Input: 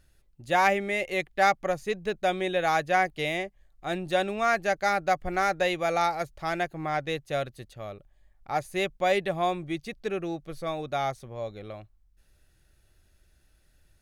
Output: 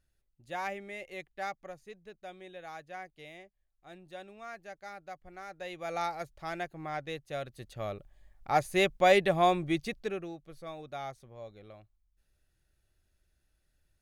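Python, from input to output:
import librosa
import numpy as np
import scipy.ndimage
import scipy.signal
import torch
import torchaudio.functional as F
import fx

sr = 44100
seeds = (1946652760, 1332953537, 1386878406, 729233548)

y = fx.gain(x, sr, db=fx.line((1.29, -14.0), (2.08, -20.0), (5.46, -20.0), (5.99, -8.0), (7.4, -8.0), (7.81, 2.0), (9.86, 2.0), (10.36, -11.0)))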